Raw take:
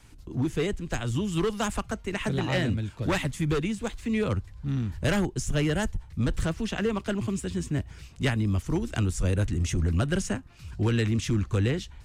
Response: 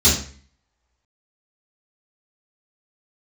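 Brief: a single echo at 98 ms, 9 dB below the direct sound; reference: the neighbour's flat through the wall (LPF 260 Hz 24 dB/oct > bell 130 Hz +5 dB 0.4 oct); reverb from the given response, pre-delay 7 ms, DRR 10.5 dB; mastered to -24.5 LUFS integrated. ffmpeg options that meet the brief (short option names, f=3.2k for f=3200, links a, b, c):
-filter_complex "[0:a]aecho=1:1:98:0.355,asplit=2[a][b];[1:a]atrim=start_sample=2205,adelay=7[c];[b][c]afir=irnorm=-1:irlink=0,volume=-29dB[d];[a][d]amix=inputs=2:normalize=0,lowpass=f=260:w=0.5412,lowpass=f=260:w=1.3066,equalizer=f=130:t=o:w=0.4:g=5,volume=0.5dB"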